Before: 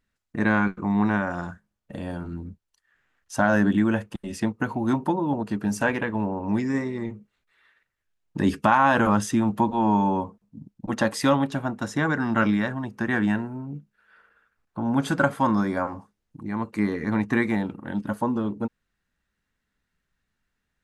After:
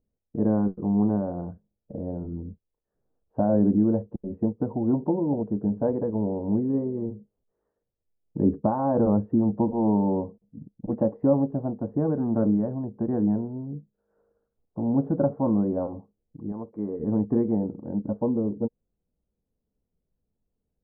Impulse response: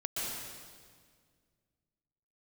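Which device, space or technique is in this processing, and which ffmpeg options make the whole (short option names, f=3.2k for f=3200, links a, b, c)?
under water: -filter_complex "[0:a]asettb=1/sr,asplit=3[a][b][c];[a]atrim=end=16.524[d];[b]atrim=start=16.52:end=17,asetpts=PTS-STARTPTS,afade=t=in:d=0.004:c=qsin,afade=t=out:st=0.476:d=0.004:c=qsin,lowshelf=f=410:g=-10[e];[c]atrim=start=16.996[f];[d][e]acrossfade=d=0.004:c1=hsin:c2=qsin[g];[g][f]acrossfade=d=0.004:c1=qsin:c2=hsin,lowpass=f=670:w=0.5412,lowpass=f=670:w=1.3066,equalizer=f=470:t=o:w=0.34:g=5.5"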